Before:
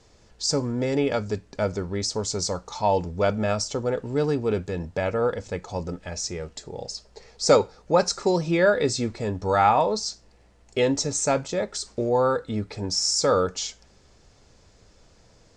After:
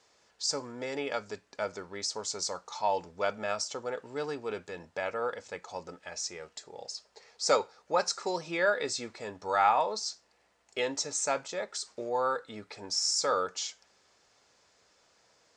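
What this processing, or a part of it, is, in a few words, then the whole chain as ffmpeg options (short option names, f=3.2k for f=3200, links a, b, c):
filter by subtraction: -filter_complex "[0:a]asplit=2[a][b];[b]lowpass=1.2k,volume=-1[c];[a][c]amix=inputs=2:normalize=0,volume=-5.5dB"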